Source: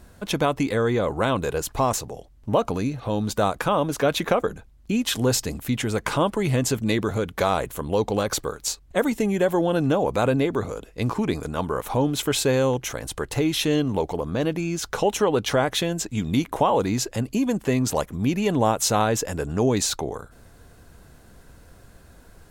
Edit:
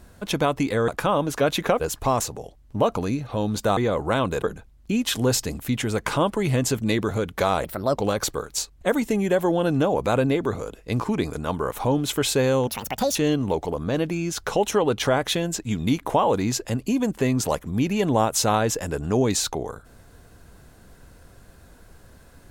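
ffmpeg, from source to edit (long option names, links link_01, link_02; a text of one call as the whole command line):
ffmpeg -i in.wav -filter_complex "[0:a]asplit=9[link_01][link_02][link_03][link_04][link_05][link_06][link_07][link_08][link_09];[link_01]atrim=end=0.882[link_10];[link_02]atrim=start=3.498:end=4.422[link_11];[link_03]atrim=start=1.528:end=3.502[link_12];[link_04]atrim=start=0.878:end=1.532[link_13];[link_05]atrim=start=4.418:end=7.644[link_14];[link_06]atrim=start=7.64:end=8.06,asetpts=PTS-STARTPTS,asetrate=57330,aresample=44100[link_15];[link_07]atrim=start=8.056:end=12.774[link_16];[link_08]atrim=start=12.77:end=13.62,asetpts=PTS-STARTPTS,asetrate=77616,aresample=44100,atrim=end_sample=21298,asetpts=PTS-STARTPTS[link_17];[link_09]atrim=start=13.616[link_18];[link_10][link_11]acrossfade=duration=0.004:curve1=hsin:curve2=hsin[link_19];[link_19][link_12]acrossfade=duration=0.004:curve1=hsin:curve2=hsin[link_20];[link_20][link_13]acrossfade=duration=0.004:curve1=hsin:curve2=hsin[link_21];[link_21][link_14]acrossfade=duration=0.004:curve1=hsin:curve2=hsin[link_22];[link_22][link_15]acrossfade=duration=0.004:curve1=hsin:curve2=hsin[link_23];[link_23][link_16]acrossfade=duration=0.004:curve1=hsin:curve2=hsin[link_24];[link_24][link_17]acrossfade=duration=0.004:curve1=hsin:curve2=hsin[link_25];[link_25][link_18]acrossfade=duration=0.004:curve1=hsin:curve2=hsin" out.wav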